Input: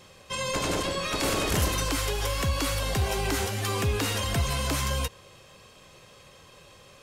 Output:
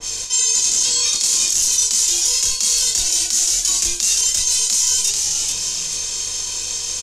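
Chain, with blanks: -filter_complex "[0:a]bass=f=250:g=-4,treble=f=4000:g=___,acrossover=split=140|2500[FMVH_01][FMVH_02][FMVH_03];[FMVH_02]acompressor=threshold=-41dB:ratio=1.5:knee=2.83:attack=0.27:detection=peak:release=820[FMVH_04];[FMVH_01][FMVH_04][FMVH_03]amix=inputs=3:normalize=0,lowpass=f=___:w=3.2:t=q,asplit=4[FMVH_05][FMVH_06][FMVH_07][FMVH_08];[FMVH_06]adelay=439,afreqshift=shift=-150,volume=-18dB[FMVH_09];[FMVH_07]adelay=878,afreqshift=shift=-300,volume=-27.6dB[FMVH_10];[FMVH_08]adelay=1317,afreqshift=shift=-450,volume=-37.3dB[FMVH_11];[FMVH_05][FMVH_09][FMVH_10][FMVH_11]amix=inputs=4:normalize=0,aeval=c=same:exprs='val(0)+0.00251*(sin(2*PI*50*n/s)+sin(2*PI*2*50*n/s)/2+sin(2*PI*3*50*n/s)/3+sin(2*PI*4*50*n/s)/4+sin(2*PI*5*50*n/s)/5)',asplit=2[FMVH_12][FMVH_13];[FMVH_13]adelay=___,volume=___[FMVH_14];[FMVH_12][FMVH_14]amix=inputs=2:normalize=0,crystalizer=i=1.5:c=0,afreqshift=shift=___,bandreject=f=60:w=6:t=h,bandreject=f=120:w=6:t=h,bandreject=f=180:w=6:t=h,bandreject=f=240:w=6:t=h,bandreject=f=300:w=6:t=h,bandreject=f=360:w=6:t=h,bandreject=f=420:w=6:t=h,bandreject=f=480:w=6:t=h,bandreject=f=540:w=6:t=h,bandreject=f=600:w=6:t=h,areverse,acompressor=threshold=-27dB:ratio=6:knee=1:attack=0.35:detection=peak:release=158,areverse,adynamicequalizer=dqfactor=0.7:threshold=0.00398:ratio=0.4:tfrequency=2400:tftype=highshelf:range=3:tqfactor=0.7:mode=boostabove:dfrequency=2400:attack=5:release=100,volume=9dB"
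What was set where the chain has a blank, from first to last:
9, 6600, 27, -4dB, -67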